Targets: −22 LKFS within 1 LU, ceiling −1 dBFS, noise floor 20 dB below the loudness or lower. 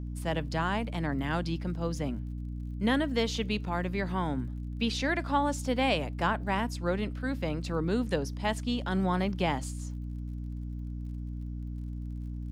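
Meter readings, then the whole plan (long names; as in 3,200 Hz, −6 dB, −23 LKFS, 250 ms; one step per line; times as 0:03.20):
crackle rate 48 per second; mains hum 60 Hz; hum harmonics up to 300 Hz; level of the hum −34 dBFS; integrated loudness −32.0 LKFS; sample peak −14.5 dBFS; target loudness −22.0 LKFS
→ click removal
mains-hum notches 60/120/180/240/300 Hz
level +10 dB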